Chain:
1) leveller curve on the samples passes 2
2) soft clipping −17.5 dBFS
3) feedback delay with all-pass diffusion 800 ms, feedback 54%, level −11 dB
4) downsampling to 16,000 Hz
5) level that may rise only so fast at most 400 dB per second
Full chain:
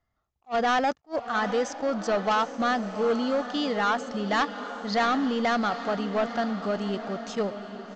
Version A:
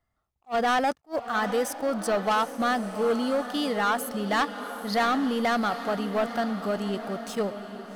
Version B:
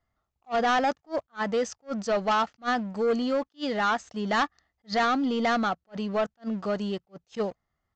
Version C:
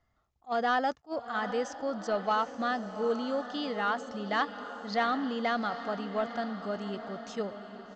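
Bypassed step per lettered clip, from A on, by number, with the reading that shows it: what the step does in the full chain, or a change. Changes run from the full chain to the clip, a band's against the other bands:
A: 4, 8 kHz band +4.5 dB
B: 3, change in momentary loudness spread +2 LU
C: 1, change in crest factor +4.0 dB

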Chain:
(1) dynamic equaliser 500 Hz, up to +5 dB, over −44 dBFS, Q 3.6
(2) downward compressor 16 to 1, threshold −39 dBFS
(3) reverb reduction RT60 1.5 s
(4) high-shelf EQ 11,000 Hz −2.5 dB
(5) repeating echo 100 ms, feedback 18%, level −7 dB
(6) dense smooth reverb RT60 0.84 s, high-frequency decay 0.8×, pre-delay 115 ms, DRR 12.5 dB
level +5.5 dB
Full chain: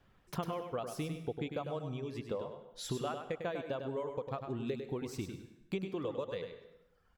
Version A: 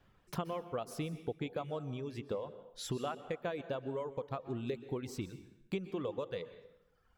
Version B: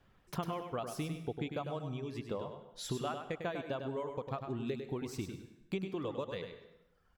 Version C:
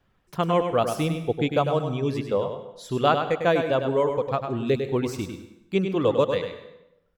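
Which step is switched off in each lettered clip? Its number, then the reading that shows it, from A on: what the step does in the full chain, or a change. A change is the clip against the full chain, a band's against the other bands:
5, echo-to-direct ratio −5.5 dB to −12.5 dB
1, 500 Hz band −2.0 dB
2, average gain reduction 13.0 dB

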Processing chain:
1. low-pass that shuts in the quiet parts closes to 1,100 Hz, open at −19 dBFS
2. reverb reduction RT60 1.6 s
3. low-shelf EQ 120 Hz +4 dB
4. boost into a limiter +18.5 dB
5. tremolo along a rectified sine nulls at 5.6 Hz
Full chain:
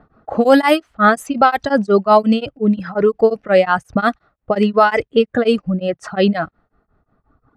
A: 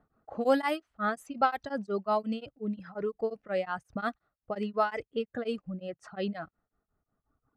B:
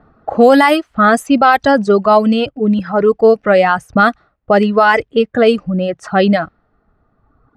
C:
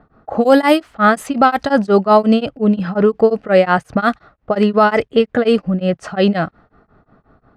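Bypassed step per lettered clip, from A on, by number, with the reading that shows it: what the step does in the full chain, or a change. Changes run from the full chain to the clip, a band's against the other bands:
4, change in crest factor +5.5 dB
5, change in momentary loudness spread −2 LU
2, 125 Hz band +2.5 dB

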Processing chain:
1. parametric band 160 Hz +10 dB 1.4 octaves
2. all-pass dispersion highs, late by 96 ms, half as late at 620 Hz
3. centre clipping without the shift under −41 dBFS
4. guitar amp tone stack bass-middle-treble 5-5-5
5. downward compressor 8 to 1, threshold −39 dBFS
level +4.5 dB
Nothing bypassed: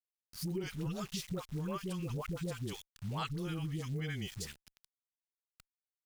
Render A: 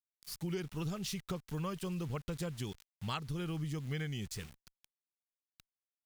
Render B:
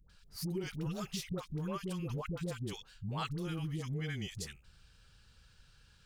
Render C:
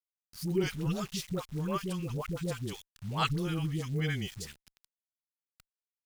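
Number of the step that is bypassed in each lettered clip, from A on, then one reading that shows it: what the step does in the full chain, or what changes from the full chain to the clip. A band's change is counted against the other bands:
2, change in crest factor +3.0 dB
3, distortion level −30 dB
5, average gain reduction 4.0 dB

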